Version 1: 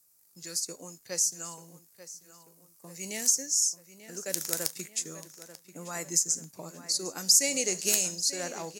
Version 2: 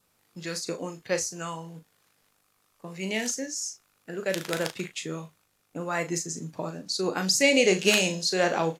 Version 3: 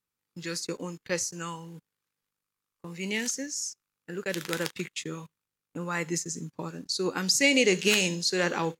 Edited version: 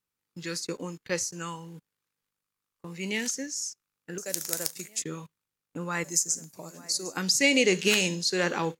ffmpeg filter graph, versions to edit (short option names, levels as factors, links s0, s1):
-filter_complex "[0:a]asplit=2[s0][s1];[2:a]asplit=3[s2][s3][s4];[s2]atrim=end=4.182[s5];[s0]atrim=start=4.178:end=5.022[s6];[s3]atrim=start=5.018:end=6.042[s7];[s1]atrim=start=6.038:end=7.172[s8];[s4]atrim=start=7.168[s9];[s5][s6]acrossfade=d=0.004:c1=hsin:c2=hsin[s10];[s10][s7]acrossfade=d=0.004:c1=hsin:c2=hsin[s11];[s11][s8]acrossfade=d=0.004:c1=hsin:c2=hsin[s12];[s12][s9]acrossfade=d=0.004:c1=hsin:c2=hsin"